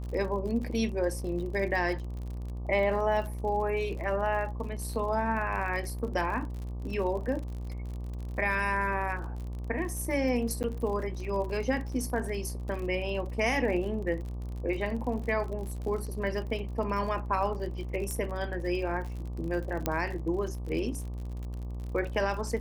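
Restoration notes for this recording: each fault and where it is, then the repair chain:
buzz 60 Hz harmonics 20 -36 dBFS
crackle 50 per s -37 dBFS
10.63–10.64 s: dropout 9.3 ms
18.11 s: pop -20 dBFS
19.86 s: pop -13 dBFS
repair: de-click; de-hum 60 Hz, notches 20; interpolate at 10.63 s, 9.3 ms

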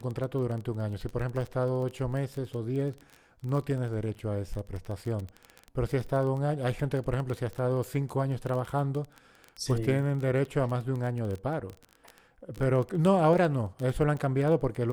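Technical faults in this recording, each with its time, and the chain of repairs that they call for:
crackle 20 per s -33 dBFS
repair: de-click

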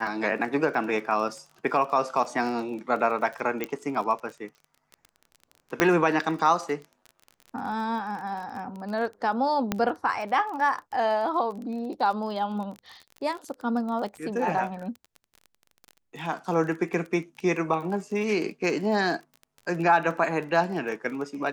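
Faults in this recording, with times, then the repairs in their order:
crackle 27 per s -34 dBFS
3.64 s: pop -14 dBFS
5.80 s: pop -6 dBFS
9.72 s: pop -10 dBFS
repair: de-click

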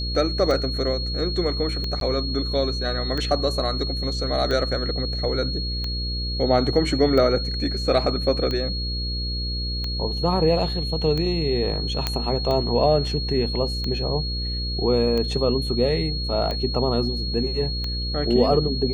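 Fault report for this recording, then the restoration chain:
buzz 60 Hz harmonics 9 -28 dBFS
tick 45 rpm
whine 4.3 kHz -29 dBFS
2.00–2.01 s: dropout 12 ms
12.07 s: pop -7 dBFS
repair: de-click; band-stop 4.3 kHz, Q 30; de-hum 60 Hz, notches 9; interpolate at 2.00 s, 12 ms

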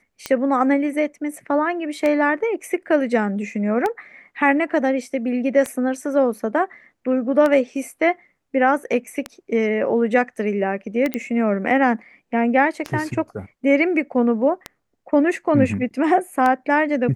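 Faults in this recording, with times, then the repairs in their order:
tick 33 1/3 rpm -10 dBFS
11.14 s: pop -10 dBFS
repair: de-click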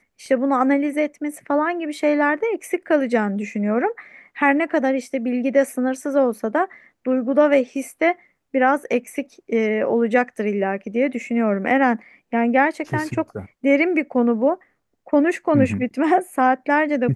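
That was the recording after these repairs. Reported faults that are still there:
nothing left

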